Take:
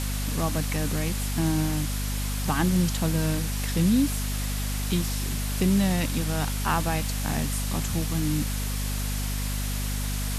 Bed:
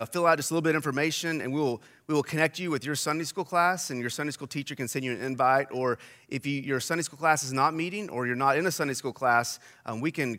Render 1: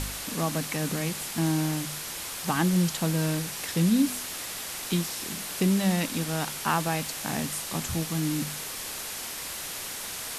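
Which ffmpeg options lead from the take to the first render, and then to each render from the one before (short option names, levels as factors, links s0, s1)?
-af "bandreject=f=50:t=h:w=4,bandreject=f=100:t=h:w=4,bandreject=f=150:t=h:w=4,bandreject=f=200:t=h:w=4,bandreject=f=250:t=h:w=4"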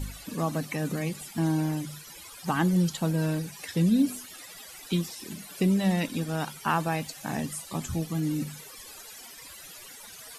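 -af "afftdn=nr=17:nf=-36"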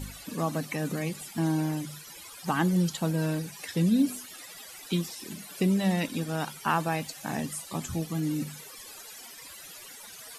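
-af "lowshelf=f=80:g=-8"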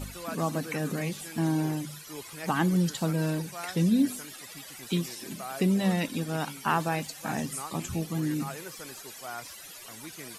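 -filter_complex "[1:a]volume=0.15[s0];[0:a][s0]amix=inputs=2:normalize=0"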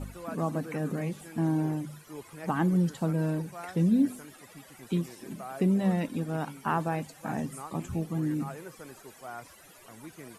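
-af "lowpass=10000,equalizer=f=4700:w=0.51:g=-13"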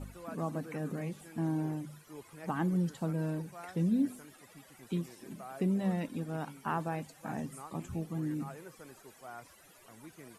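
-af "volume=0.531"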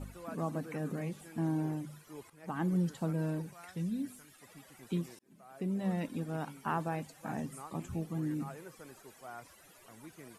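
-filter_complex "[0:a]asettb=1/sr,asplit=3[s0][s1][s2];[s0]atrim=end=3.534[s3];[s1]atrim=start=3.53:end=4.42,asetpts=PTS-STARTPTS,afade=t=in:d=0.004:c=qsin,afade=t=out:st=0.886:d=0.004:c=qsin,equalizer=f=430:w=0.41:g=-9.5[s4];[s2]atrim=start=4.416[s5];[s3][s4]acrossfade=d=0.004:c1=hsin:c2=qsin[s6];[s6][s5]acrossfade=d=0.004:c1=qsin:c2=hsin,asplit=3[s7][s8][s9];[s7]atrim=end=2.3,asetpts=PTS-STARTPTS,afade=t=out:st=2.296:d=0.004:c=hsin:silence=0.251189[s10];[s8]atrim=start=2.3:end=5.19,asetpts=PTS-STARTPTS,afade=t=in:d=0.43:silence=0.251189,afade=t=out:st=2.886:d=0.004:c=hsin[s11];[s9]atrim=start=5.19,asetpts=PTS-STARTPTS,afade=t=in:d=0.85[s12];[s10][s11][s12]concat=n=3:v=0:a=1"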